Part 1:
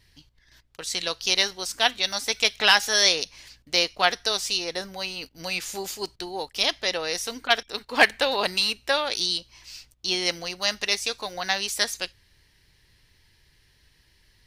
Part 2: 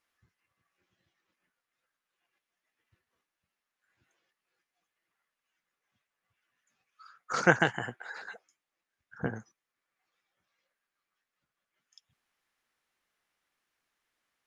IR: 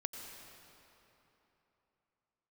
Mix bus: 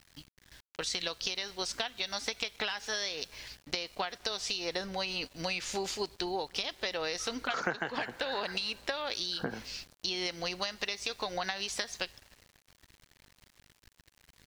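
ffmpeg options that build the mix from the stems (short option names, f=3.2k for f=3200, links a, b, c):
-filter_complex "[0:a]acompressor=threshold=-27dB:ratio=20,aeval=exprs='val(0)+0.000501*(sin(2*PI*50*n/s)+sin(2*PI*2*50*n/s)/2+sin(2*PI*3*50*n/s)/3+sin(2*PI*4*50*n/s)/4+sin(2*PI*5*50*n/s)/5)':c=same,volume=1.5dB,asplit=2[a][b];[b]volume=-19.5dB[c];[1:a]highpass=190,adelay=200,volume=2.5dB,asplit=2[d][e];[e]volume=-19dB[f];[2:a]atrim=start_sample=2205[g];[c][f]amix=inputs=2:normalize=0[h];[h][g]afir=irnorm=-1:irlink=0[i];[a][d][i]amix=inputs=3:normalize=0,lowpass=5.5k,aeval=exprs='val(0)*gte(abs(val(0)),0.00251)':c=same,acompressor=threshold=-30dB:ratio=6"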